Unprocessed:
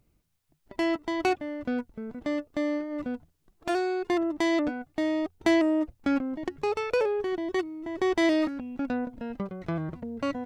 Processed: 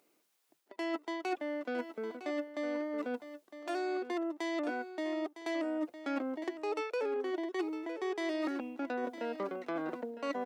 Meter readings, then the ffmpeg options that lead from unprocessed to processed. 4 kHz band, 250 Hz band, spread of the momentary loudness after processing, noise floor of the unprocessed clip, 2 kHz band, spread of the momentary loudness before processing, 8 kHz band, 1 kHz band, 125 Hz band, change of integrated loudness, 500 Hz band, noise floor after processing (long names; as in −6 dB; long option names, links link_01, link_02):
−8.5 dB, −9.5 dB, 5 LU, −71 dBFS, −7.0 dB, 11 LU, −9.0 dB, −6.5 dB, below −20 dB, −8.0 dB, −7.0 dB, −75 dBFS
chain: -af "highpass=frequency=320:width=0.5412,highpass=frequency=320:width=1.3066,areverse,acompressor=threshold=-38dB:ratio=6,areverse,aecho=1:1:958:0.251,volume=4.5dB"